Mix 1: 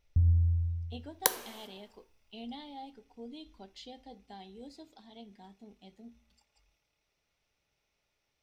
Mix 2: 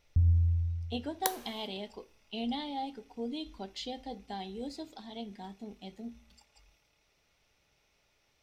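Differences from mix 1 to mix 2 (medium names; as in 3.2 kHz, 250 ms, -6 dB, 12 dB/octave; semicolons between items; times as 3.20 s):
speech +8.5 dB; second sound -5.5 dB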